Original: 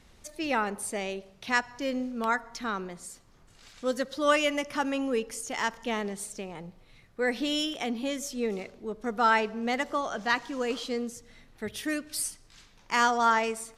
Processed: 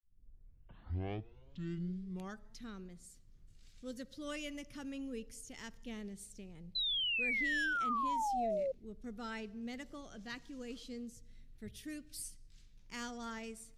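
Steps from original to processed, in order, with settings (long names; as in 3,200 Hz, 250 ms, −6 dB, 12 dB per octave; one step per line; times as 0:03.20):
turntable start at the beginning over 2.67 s
guitar amp tone stack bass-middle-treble 10-0-1
sound drawn into the spectrogram fall, 0:06.75–0:08.72, 520–4,100 Hz −42 dBFS
level +7 dB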